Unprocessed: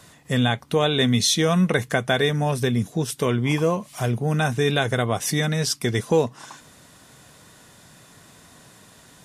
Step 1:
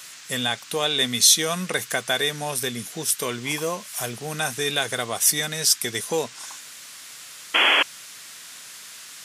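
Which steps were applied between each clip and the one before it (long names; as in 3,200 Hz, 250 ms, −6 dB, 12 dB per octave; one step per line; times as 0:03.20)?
sound drawn into the spectrogram noise, 0:07.54–0:07.83, 230–3,400 Hz −17 dBFS
RIAA equalisation recording
noise in a band 1,200–8,000 Hz −41 dBFS
level −3 dB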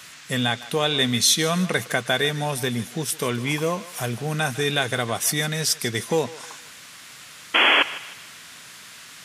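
bass and treble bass +7 dB, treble −7 dB
feedback echo with a high-pass in the loop 154 ms, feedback 43%, high-pass 480 Hz, level −16 dB
level +2 dB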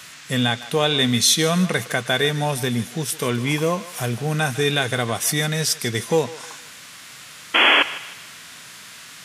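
harmonic and percussive parts rebalanced percussive −4 dB
level +4 dB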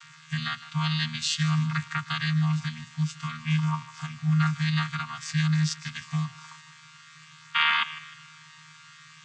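channel vocoder with a chord as carrier bare fifth, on D#3
elliptic band-stop filter 140–1,100 Hz, stop band 50 dB
level +2 dB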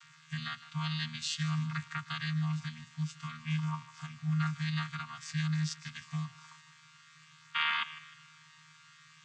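notch filter 830 Hz, Q 12
level −8 dB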